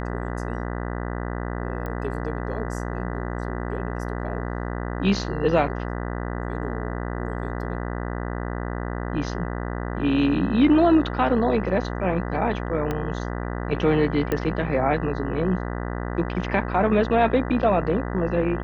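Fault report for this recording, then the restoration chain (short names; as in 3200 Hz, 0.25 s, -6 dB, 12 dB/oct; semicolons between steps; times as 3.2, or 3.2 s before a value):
buzz 60 Hz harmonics 33 -29 dBFS
1.86 pop -20 dBFS
12.91 pop -14 dBFS
14.32 pop -12 dBFS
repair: de-click; de-hum 60 Hz, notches 33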